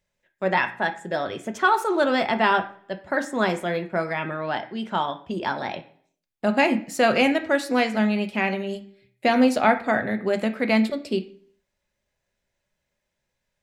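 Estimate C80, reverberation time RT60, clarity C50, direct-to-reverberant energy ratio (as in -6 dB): 17.0 dB, 0.55 s, 13.5 dB, 6.0 dB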